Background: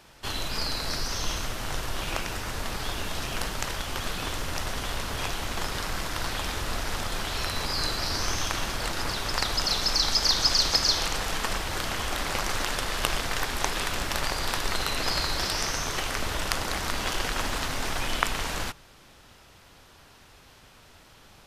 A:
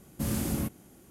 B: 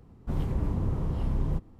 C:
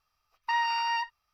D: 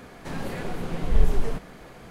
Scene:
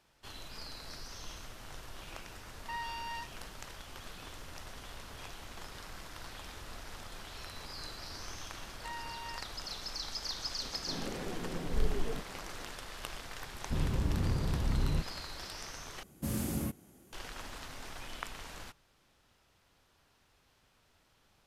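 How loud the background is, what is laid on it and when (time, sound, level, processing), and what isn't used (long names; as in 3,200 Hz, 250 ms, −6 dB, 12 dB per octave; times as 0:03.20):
background −16 dB
0:02.20: mix in C −12.5 dB
0:08.36: mix in C −16.5 dB
0:10.62: mix in D −12 dB + parametric band 330 Hz +7 dB 1.7 octaves
0:13.43: mix in B −3 dB
0:16.03: overwrite with A −4.5 dB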